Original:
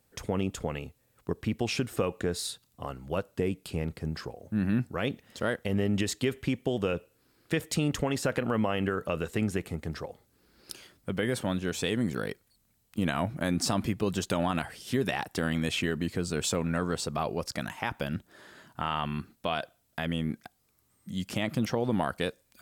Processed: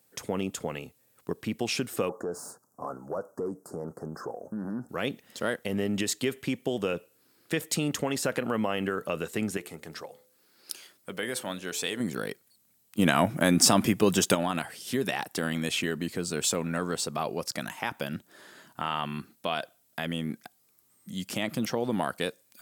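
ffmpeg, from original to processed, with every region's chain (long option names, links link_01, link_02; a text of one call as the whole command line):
ffmpeg -i in.wav -filter_complex "[0:a]asettb=1/sr,asplit=3[link_01][link_02][link_03];[link_01]atrim=end=2.094[link_04];[link_02]atrim=start=2.09:end=4.89,asetpts=PTS-STARTPTS,afade=type=in:duration=0.004:curve=qsin,afade=type=out:start_time=2.796:duration=0.004:curve=qsin,acompressor=threshold=-30dB:ratio=4:attack=3.2:release=140:knee=1:detection=peak,asplit=2[link_05][link_06];[link_06]highpass=frequency=720:poles=1,volume=18dB,asoftclip=type=tanh:threshold=-21dB[link_07];[link_05][link_07]amix=inputs=2:normalize=0,lowpass=frequency=1100:poles=1,volume=-6dB,asuperstop=centerf=2900:order=8:qfactor=0.67[link_08];[link_03]atrim=start=4.886[link_09];[link_04][link_08]acrossfade=duration=0.004:curve1=hsin:curve2=qsin[link_10];[link_10][link_09]acrossfade=duration=0.004:curve1=qsin:curve2=hsin,asettb=1/sr,asplit=3[link_11][link_12][link_13];[link_11]atrim=end=9.574[link_14];[link_12]atrim=start=9.57:end=12,asetpts=PTS-STARTPTS,afade=type=in:duration=0.004:curve=qsin,afade=type=out:start_time=2.426:duration=0.004:curve=qsin,lowshelf=frequency=350:gain=-9.5,bandreject=frequency=72.46:width_type=h:width=4,bandreject=frequency=144.92:width_type=h:width=4,bandreject=frequency=217.38:width_type=h:width=4,bandreject=frequency=289.84:width_type=h:width=4,bandreject=frequency=362.3:width_type=h:width=4,bandreject=frequency=434.76:width_type=h:width=4,bandreject=frequency=507.22:width_type=h:width=4,bandreject=frequency=579.68:width_type=h:width=4[link_15];[link_13]atrim=start=11.996[link_16];[link_14][link_15]acrossfade=duration=0.004:curve1=hsin:curve2=qsin[link_17];[link_17][link_16]acrossfade=duration=0.004:curve1=qsin:curve2=hsin,asettb=1/sr,asplit=3[link_18][link_19][link_20];[link_18]atrim=end=12.994[link_21];[link_19]atrim=start=12.99:end=14.35,asetpts=PTS-STARTPTS,afade=type=in:duration=0.004:curve=qsin,afade=type=out:start_time=1.356:duration=0.004:curve=qsin,acontrast=84,bandreject=frequency=4200:width=8.1[link_22];[link_20]atrim=start=14.346[link_23];[link_21][link_22]acrossfade=duration=0.004:curve1=hsin:curve2=qsin[link_24];[link_24][link_23]acrossfade=duration=0.004:curve1=qsin:curve2=hsin,highpass=160,highshelf=frequency=6000:gain=7.5" out.wav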